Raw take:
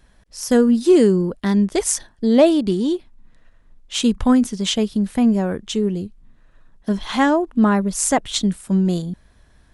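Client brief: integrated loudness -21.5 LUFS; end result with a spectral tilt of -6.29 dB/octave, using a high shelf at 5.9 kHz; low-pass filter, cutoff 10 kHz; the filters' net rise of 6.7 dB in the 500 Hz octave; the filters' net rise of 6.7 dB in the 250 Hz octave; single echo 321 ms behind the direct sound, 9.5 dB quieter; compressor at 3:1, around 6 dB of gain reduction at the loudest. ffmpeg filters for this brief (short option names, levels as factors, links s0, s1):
-af "lowpass=10000,equalizer=f=250:t=o:g=6.5,equalizer=f=500:t=o:g=6.5,highshelf=f=5900:g=-5,acompressor=threshold=0.316:ratio=3,aecho=1:1:321:0.335,volume=0.501"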